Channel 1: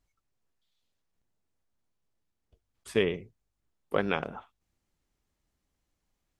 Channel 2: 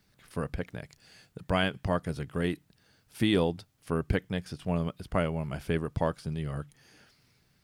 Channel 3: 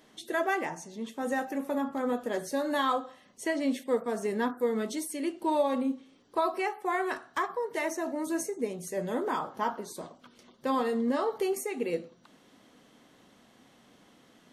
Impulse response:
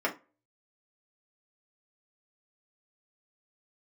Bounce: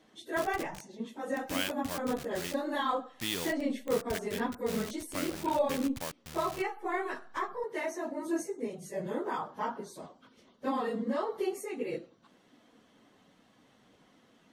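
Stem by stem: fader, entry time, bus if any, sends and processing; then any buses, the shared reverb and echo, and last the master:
-19.0 dB, 1.35 s, no send, dry
-6.0 dB, 0.00 s, no send, level-crossing sampler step -30 dBFS; tilt shelf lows -9 dB, about 1500 Hz
-3.5 dB, 0.00 s, no send, phase scrambler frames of 50 ms; high shelf 6900 Hz -7 dB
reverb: off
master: dry

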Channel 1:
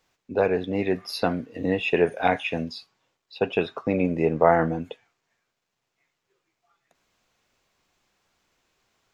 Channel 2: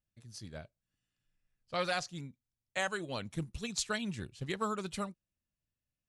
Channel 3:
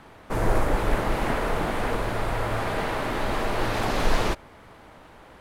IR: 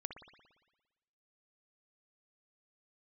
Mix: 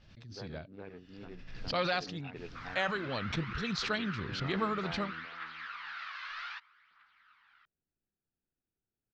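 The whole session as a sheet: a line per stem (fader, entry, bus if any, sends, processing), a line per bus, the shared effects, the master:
-14.0 dB, 0.00 s, no send, echo send -7.5 dB, Wiener smoothing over 41 samples; bell 590 Hz -9 dB 1 oct; auto duck -12 dB, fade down 0.80 s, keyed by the second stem
+1.5 dB, 0.00 s, no send, no echo send, backwards sustainer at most 48 dB/s
-7.0 dB, 2.25 s, no send, no echo send, elliptic high-pass 1300 Hz, stop band 70 dB; tilt -3.5 dB/oct; phaser 0.63 Hz, delay 2 ms, feedback 45%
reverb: off
echo: feedback echo 0.413 s, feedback 20%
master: steep low-pass 5100 Hz 36 dB/oct

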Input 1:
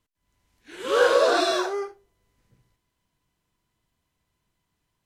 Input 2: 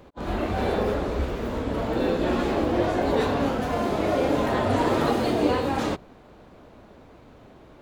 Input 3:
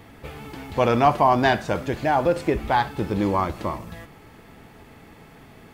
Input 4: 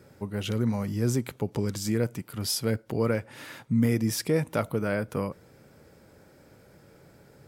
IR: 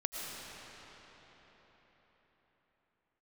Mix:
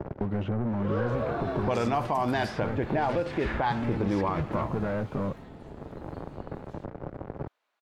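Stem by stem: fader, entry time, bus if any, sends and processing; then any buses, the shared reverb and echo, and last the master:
-2.5 dB, 0.00 s, bus A, no send, compressor 2.5:1, threshold -27 dBFS, peak gain reduction 9 dB
5.18 s -9.5 dB -> 5.75 s -18 dB, 0.90 s, no bus, no send, HPF 1400 Hz 12 dB/oct; compressor 4:1, threshold -45 dBFS, peak gain reduction 13.5 dB
+1.5 dB, 0.90 s, bus A, no send, dry
-12.0 dB, 0.00 s, bus A, no send, notch 480 Hz, Q 12; sample leveller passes 5; three-band squash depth 100%
bus A: 0.0 dB, low-pass opened by the level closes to 620 Hz, open at -10.5 dBFS; compressor 2.5:1, threshold -24 dBFS, peak gain reduction 9.5 dB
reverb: off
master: limiter -18 dBFS, peak gain reduction 5 dB

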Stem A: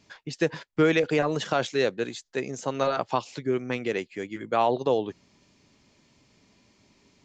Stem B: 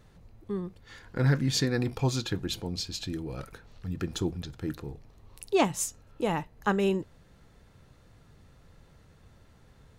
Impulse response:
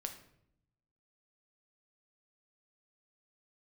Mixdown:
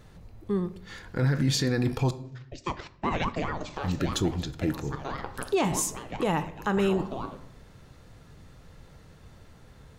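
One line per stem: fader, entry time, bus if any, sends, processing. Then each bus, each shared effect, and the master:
-0.5 dB, 2.25 s, send -3 dB, level quantiser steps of 9 dB; ring modulator with a swept carrier 420 Hz, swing 70%, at 4.8 Hz; auto duck -17 dB, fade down 0.45 s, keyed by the second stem
+2.0 dB, 0.00 s, muted 2.11–3.74, send -3.5 dB, dry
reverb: on, RT60 0.70 s, pre-delay 6 ms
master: limiter -17 dBFS, peak gain reduction 10 dB

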